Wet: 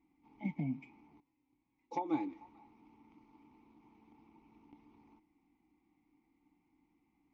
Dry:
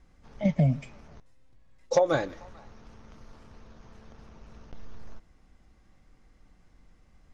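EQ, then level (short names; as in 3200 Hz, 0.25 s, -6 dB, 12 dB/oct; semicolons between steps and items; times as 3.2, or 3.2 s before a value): vowel filter u; +3.0 dB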